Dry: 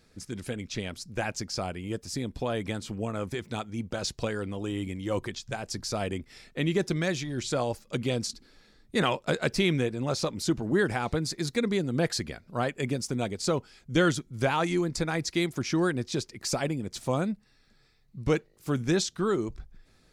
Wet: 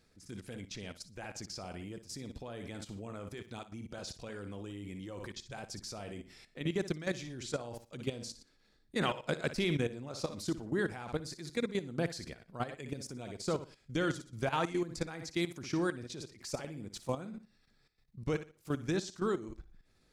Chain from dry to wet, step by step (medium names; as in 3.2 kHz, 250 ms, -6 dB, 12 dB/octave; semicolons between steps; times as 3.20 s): flutter echo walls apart 10.1 m, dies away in 0.35 s; level held to a coarse grid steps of 13 dB; trim -4.5 dB